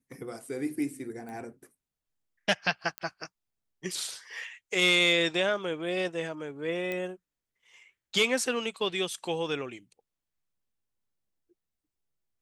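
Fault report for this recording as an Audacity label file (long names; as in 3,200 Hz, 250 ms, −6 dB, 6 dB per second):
1.290000	1.290000	click
2.980000	2.980000	click −18 dBFS
6.920000	6.920000	click −20 dBFS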